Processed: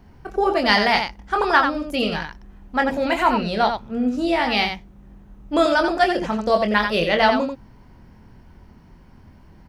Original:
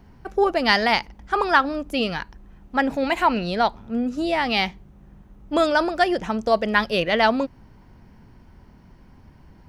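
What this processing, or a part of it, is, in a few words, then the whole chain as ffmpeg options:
slapback doubling: -filter_complex "[0:a]asplit=3[link_01][link_02][link_03];[link_02]adelay=24,volume=-6dB[link_04];[link_03]adelay=89,volume=-6.5dB[link_05];[link_01][link_04][link_05]amix=inputs=3:normalize=0"

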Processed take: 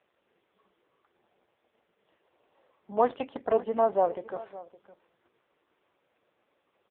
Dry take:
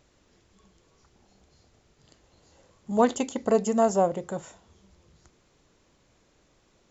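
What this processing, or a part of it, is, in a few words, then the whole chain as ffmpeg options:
satellite phone: -af "highpass=400,lowpass=3100,aecho=1:1:564:0.126" -ar 8000 -c:a libopencore_amrnb -b:a 5150

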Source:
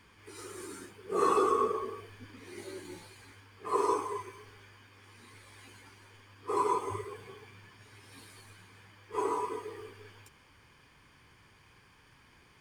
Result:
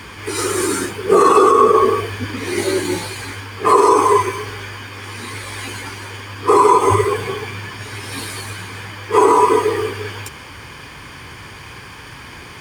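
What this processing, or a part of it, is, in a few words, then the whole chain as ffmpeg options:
mastering chain: -af "highpass=45,equalizer=frequency=190:width_type=o:width=0.77:gain=-2,acompressor=threshold=-32dB:ratio=2.5,alimiter=level_in=26.5dB:limit=-1dB:release=50:level=0:latency=1,volume=-1dB"

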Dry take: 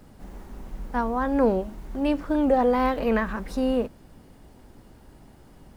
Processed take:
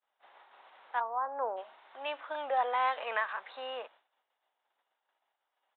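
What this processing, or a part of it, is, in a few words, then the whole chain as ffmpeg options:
musical greeting card: -filter_complex "[0:a]asplit=3[link_01][link_02][link_03];[link_01]afade=type=out:start_time=0.99:duration=0.02[link_04];[link_02]lowpass=frequency=1200:width=0.5412,lowpass=frequency=1200:width=1.3066,afade=type=in:start_time=0.99:duration=0.02,afade=type=out:start_time=1.56:duration=0.02[link_05];[link_03]afade=type=in:start_time=1.56:duration=0.02[link_06];[link_04][link_05][link_06]amix=inputs=3:normalize=0,agate=range=-33dB:threshold=-37dB:ratio=3:detection=peak,aresample=8000,aresample=44100,highpass=frequency=720:width=0.5412,highpass=frequency=720:width=1.3066,equalizer=frequency=3800:width_type=o:width=0.51:gain=5,volume=-2.5dB"

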